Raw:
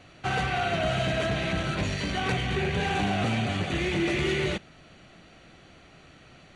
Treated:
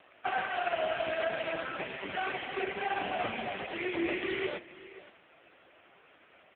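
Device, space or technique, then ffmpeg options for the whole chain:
satellite phone: -af "highpass=390,lowpass=3200,aecho=1:1:523:0.133,volume=1.12" -ar 8000 -c:a libopencore_amrnb -b:a 4750

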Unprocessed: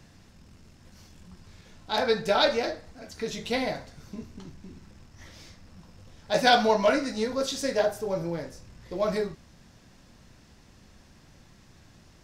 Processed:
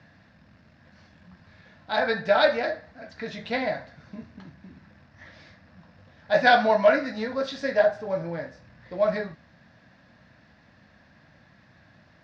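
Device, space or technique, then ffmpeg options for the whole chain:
guitar cabinet: -af "highpass=98,equalizer=f=390:t=q:w=4:g=-10,equalizer=f=630:t=q:w=4:g=6,equalizer=f=1700:t=q:w=4:g=9,equalizer=f=3100:t=q:w=4:g=-5,lowpass=f=4200:w=0.5412,lowpass=f=4200:w=1.3066"

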